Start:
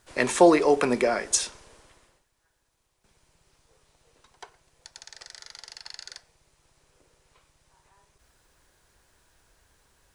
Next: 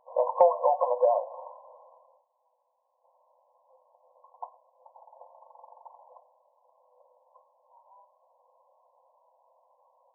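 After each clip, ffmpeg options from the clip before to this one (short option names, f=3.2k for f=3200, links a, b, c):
-af "afftfilt=real='re*between(b*sr/4096,490,1100)':imag='im*between(b*sr/4096,490,1100)':win_size=4096:overlap=0.75,acompressor=threshold=-29dB:ratio=2.5,volume=8dB"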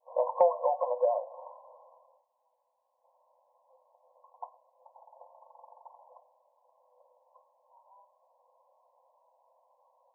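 -af "adynamicequalizer=threshold=0.01:dfrequency=970:dqfactor=1.3:tfrequency=970:tqfactor=1.3:attack=5:release=100:ratio=0.375:range=2.5:mode=cutabove:tftype=bell,volume=-2.5dB"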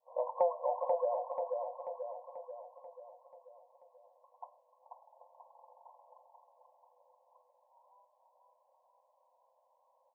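-af "aecho=1:1:487|974|1461|1948|2435|2922|3409:0.631|0.347|0.191|0.105|0.0577|0.0318|0.0175,volume=-6.5dB"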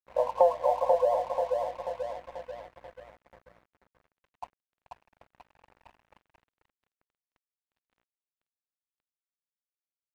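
-af "aeval=exprs='val(0)+0.000631*(sin(2*PI*60*n/s)+sin(2*PI*2*60*n/s)/2+sin(2*PI*3*60*n/s)/3+sin(2*PI*4*60*n/s)/4+sin(2*PI*5*60*n/s)/5)':c=same,aeval=exprs='sgn(val(0))*max(abs(val(0))-0.00178,0)':c=same,volume=8.5dB"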